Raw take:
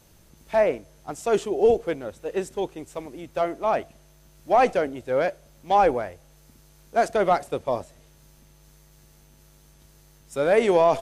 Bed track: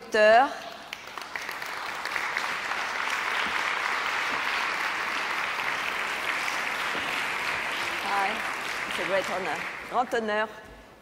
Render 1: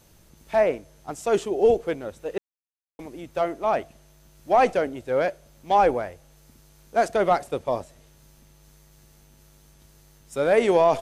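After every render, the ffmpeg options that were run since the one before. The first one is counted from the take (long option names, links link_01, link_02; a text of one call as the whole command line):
ffmpeg -i in.wav -filter_complex "[0:a]asplit=3[link_01][link_02][link_03];[link_01]atrim=end=2.38,asetpts=PTS-STARTPTS,afade=type=out:start_time=2.376:duration=0.004:curve=hsin[link_04];[link_02]atrim=start=2.38:end=2.99,asetpts=PTS-STARTPTS,volume=0[link_05];[link_03]atrim=start=2.99,asetpts=PTS-STARTPTS,afade=type=in:duration=0.004:curve=hsin[link_06];[link_04][link_05][link_06]concat=n=3:v=0:a=1" out.wav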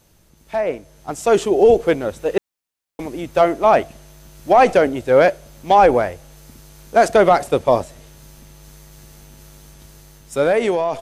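ffmpeg -i in.wav -af "alimiter=limit=-14dB:level=0:latency=1:release=77,dynaudnorm=framelen=320:gausssize=7:maxgain=12dB" out.wav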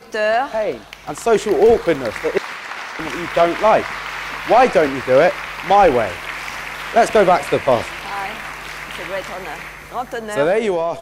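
ffmpeg -i in.wav -i bed.wav -filter_complex "[1:a]volume=1dB[link_01];[0:a][link_01]amix=inputs=2:normalize=0" out.wav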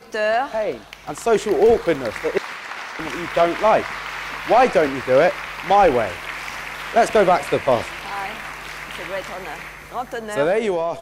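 ffmpeg -i in.wav -af "volume=-2.5dB" out.wav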